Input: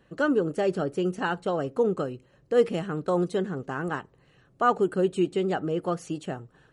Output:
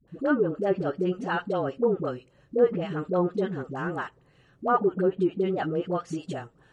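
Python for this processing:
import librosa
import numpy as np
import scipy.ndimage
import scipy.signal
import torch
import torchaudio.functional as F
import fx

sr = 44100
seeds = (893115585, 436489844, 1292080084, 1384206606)

y = fx.dispersion(x, sr, late='highs', ms=79.0, hz=490.0)
y = fx.env_lowpass_down(y, sr, base_hz=1400.0, full_db=-19.0)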